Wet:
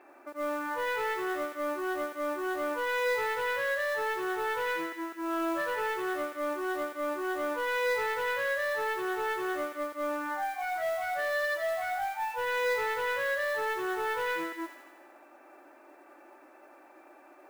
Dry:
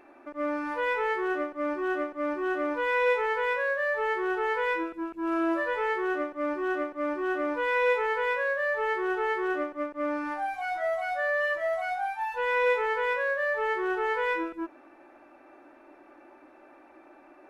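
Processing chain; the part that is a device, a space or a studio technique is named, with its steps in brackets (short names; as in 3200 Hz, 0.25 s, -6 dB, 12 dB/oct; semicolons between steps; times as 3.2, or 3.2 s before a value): carbon microphone (BPF 350–2700 Hz; soft clip -25.5 dBFS, distortion -14 dB; modulation noise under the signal 22 dB); thin delay 84 ms, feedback 65%, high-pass 1700 Hz, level -6 dB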